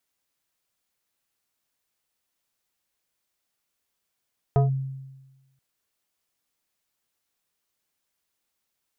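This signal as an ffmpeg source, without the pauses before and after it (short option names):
-f lavfi -i "aevalsrc='0.2*pow(10,-3*t/1.16)*sin(2*PI*134*t+0.82*clip(1-t/0.14,0,1)*sin(2*PI*4.18*134*t))':d=1.03:s=44100"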